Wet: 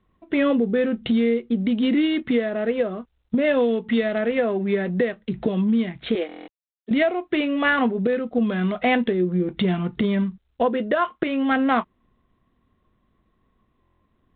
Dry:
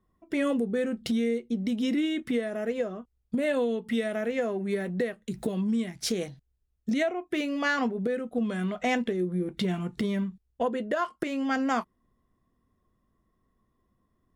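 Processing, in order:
0:06.15–0:06.91: Butterworth high-pass 280 Hz 36 dB per octave
buffer that repeats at 0:06.27/0:13.81, samples 1,024, times 8
level +7 dB
G.726 32 kbit/s 8,000 Hz

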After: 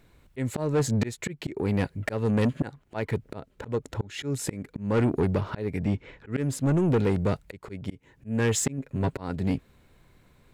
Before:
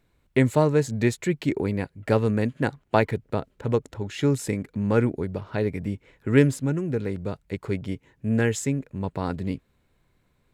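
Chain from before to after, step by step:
0:05.78–0:06.31: low-pass filter 6,700 Hz → 3,900 Hz 12 dB per octave
0:08.77–0:09.20: comb filter 7.4 ms, depth 42%
volume swells 455 ms
soft clipping −26.5 dBFS, distortion −11 dB
level +8.5 dB

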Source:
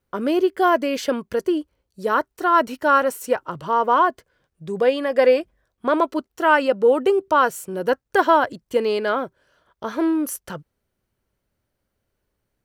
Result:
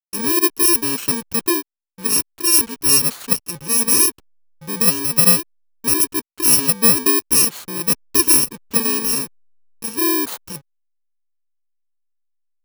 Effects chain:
samples in bit-reversed order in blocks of 64 samples
slack as between gear wheels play −36.5 dBFS
level +2.5 dB

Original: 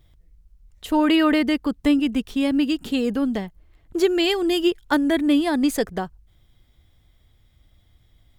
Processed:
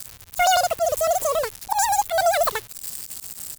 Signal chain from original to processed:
spike at every zero crossing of −13 dBFS
volume swells 103 ms
wrong playback speed 33 rpm record played at 78 rpm

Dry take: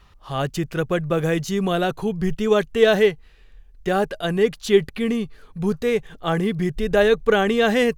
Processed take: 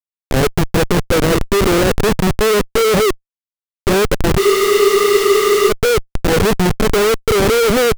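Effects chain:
compressor on every frequency bin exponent 0.6
low shelf with overshoot 670 Hz +12.5 dB, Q 3
flanger 0.67 Hz, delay 1.6 ms, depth 4.6 ms, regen +24%
comparator with hysteresis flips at −7.5 dBFS
frozen spectrum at 0:04.42, 1.27 s
level −9 dB

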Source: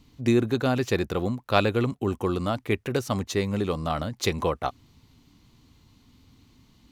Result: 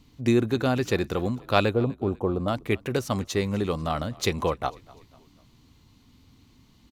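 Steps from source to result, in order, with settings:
0:01.73–0:02.48: drawn EQ curve 380 Hz 0 dB, 630 Hz +5 dB, 2,300 Hz −17 dB
on a send: echo with shifted repeats 247 ms, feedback 46%, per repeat −32 Hz, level −23 dB

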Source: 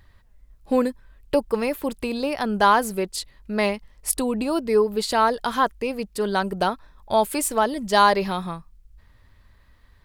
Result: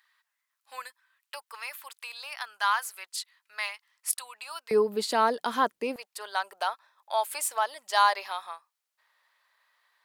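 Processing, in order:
high-pass filter 1,100 Hz 24 dB per octave, from 0:04.71 210 Hz, from 0:05.96 730 Hz
level −4.5 dB

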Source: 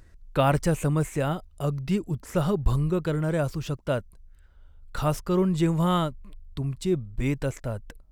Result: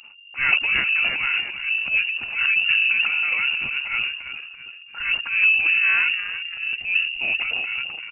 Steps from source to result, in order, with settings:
on a send: echo with shifted repeats 335 ms, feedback 47%, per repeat −75 Hz, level −11 dB
on the sum: pitch-shifted copies added −4 semitones −16 dB, +5 semitones −10 dB
transient designer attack −10 dB, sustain +10 dB
hollow resonant body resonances 200/1,400 Hz, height 7 dB
voice inversion scrambler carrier 2,800 Hz

